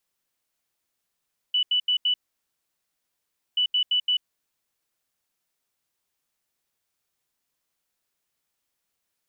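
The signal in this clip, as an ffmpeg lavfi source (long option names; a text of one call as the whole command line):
ffmpeg -f lavfi -i "aevalsrc='0.112*sin(2*PI*2970*t)*clip(min(mod(mod(t,2.03),0.17),0.09-mod(mod(t,2.03),0.17))/0.005,0,1)*lt(mod(t,2.03),0.68)':duration=4.06:sample_rate=44100" out.wav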